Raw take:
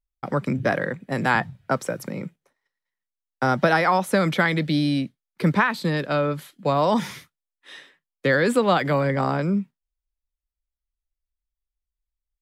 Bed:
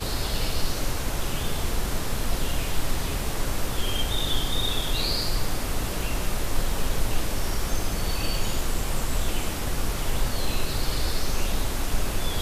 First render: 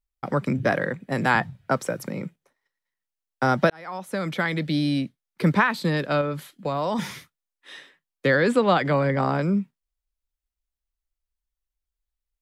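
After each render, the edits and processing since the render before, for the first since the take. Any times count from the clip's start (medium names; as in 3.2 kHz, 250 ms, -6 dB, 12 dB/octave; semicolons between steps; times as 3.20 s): 3.70–5.52 s: fade in equal-power; 6.21–6.99 s: compression 2.5:1, threshold -24 dBFS; 8.30–9.35 s: distance through air 51 m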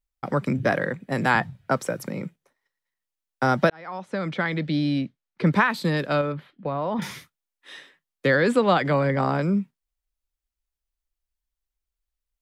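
3.69–5.53 s: distance through air 110 m; 6.32–7.02 s: distance through air 380 m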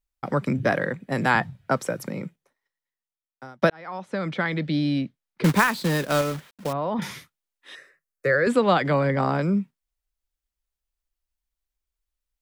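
2.07–3.62 s: fade out; 5.44–6.73 s: companded quantiser 4-bit; 7.75–8.47 s: static phaser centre 890 Hz, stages 6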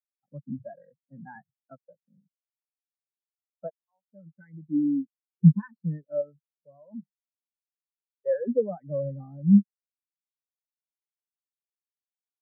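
waveshaping leveller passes 2; spectral contrast expander 4:1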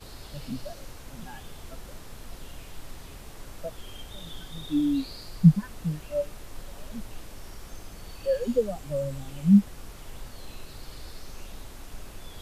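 add bed -16 dB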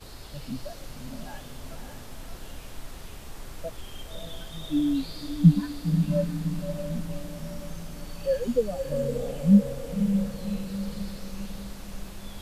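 echo that smears into a reverb 577 ms, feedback 50%, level -5.5 dB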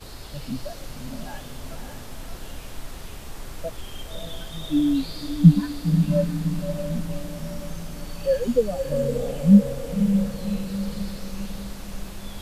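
trim +4 dB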